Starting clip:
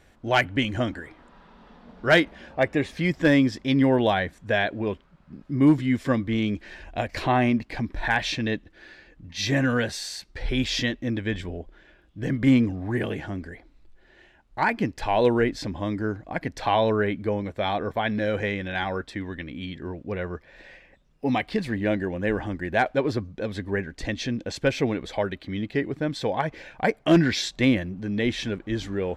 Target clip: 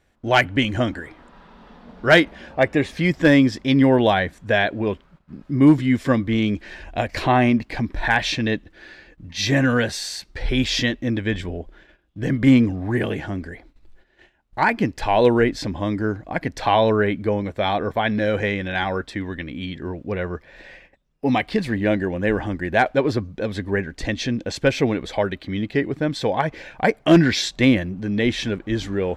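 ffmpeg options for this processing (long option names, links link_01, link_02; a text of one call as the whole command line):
ffmpeg -i in.wav -af "agate=range=-12dB:threshold=-53dB:ratio=16:detection=peak,volume=4.5dB" out.wav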